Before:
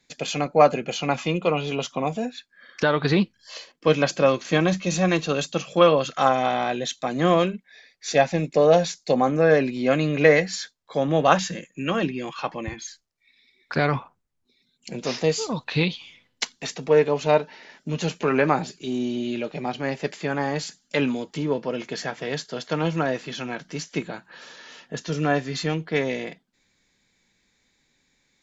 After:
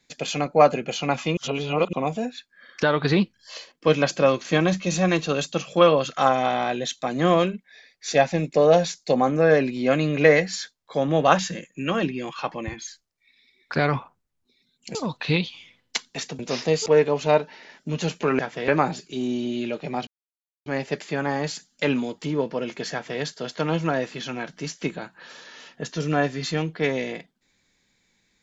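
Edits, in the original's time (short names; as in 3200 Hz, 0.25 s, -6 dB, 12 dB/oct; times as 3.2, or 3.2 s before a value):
1.37–1.93 reverse
14.95–15.42 move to 16.86
19.78 insert silence 0.59 s
22.04–22.33 copy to 18.39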